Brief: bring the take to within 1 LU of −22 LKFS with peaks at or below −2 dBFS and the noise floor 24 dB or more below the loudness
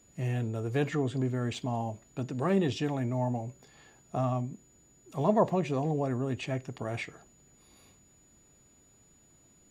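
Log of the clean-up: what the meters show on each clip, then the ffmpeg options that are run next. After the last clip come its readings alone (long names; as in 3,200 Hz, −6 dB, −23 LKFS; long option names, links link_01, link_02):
interfering tone 6,900 Hz; level of the tone −62 dBFS; integrated loudness −31.5 LKFS; sample peak −12.0 dBFS; target loudness −22.0 LKFS
→ -af "bandreject=frequency=6900:width=30"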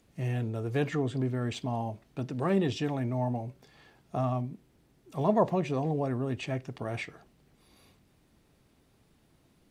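interfering tone none found; integrated loudness −31.5 LKFS; sample peak −12.0 dBFS; target loudness −22.0 LKFS
→ -af "volume=9.5dB"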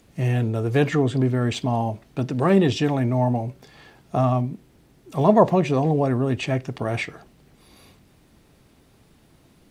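integrated loudness −22.0 LKFS; sample peak −2.5 dBFS; background noise floor −57 dBFS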